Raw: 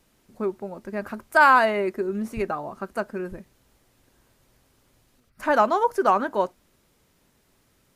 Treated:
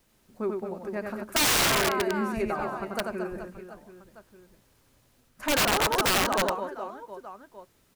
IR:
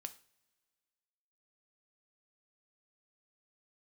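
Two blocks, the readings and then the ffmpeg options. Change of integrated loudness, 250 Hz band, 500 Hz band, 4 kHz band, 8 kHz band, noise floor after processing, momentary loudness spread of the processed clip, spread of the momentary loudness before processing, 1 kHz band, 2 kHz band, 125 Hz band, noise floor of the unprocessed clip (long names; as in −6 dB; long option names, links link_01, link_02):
−3.0 dB, −1.5 dB, −4.5 dB, +13.0 dB, +19.5 dB, −65 dBFS, 19 LU, 17 LU, −7.5 dB, −4.0 dB, +3.0 dB, −65 dBFS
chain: -af "aecho=1:1:90|225|427.5|731.2|1187:0.631|0.398|0.251|0.158|0.1,acrusher=bits=10:mix=0:aa=0.000001,aeval=exprs='(mod(5.01*val(0)+1,2)-1)/5.01':channel_layout=same,volume=-3.5dB"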